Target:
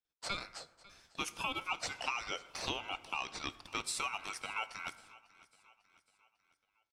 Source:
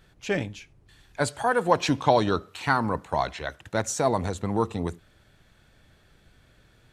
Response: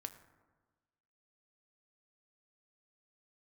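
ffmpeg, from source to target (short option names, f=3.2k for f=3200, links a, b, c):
-filter_complex "[0:a]highpass=130,aemphasis=mode=production:type=bsi,agate=range=-33dB:threshold=-56dB:ratio=16:detection=peak,acrossover=split=350 6100:gain=0.158 1 0.0708[a][b][c];[a][b][c]amix=inputs=3:normalize=0,acompressor=threshold=-29dB:ratio=6,aeval=exprs='val(0)*sin(2*PI*1800*n/s)':c=same,aecho=1:1:548|1096|1644|2192:0.0841|0.0421|0.021|0.0105,asplit=2[d][e];[1:a]atrim=start_sample=2205,highshelf=f=9.4k:g=10[f];[e][f]afir=irnorm=-1:irlink=0,volume=3dB[g];[d][g]amix=inputs=2:normalize=0,volume=-8dB"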